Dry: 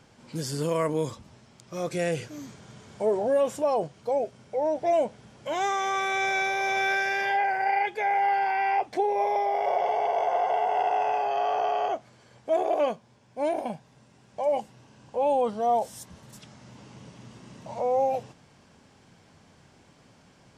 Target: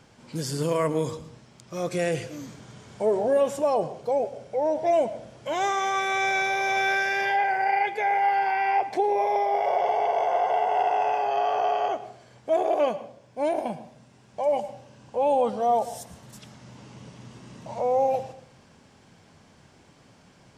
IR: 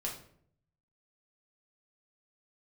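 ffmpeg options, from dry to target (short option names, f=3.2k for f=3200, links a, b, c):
-filter_complex "[0:a]asplit=2[a][b];[1:a]atrim=start_sample=2205,adelay=107[c];[b][c]afir=irnorm=-1:irlink=0,volume=-15.5dB[d];[a][d]amix=inputs=2:normalize=0,volume=1.5dB"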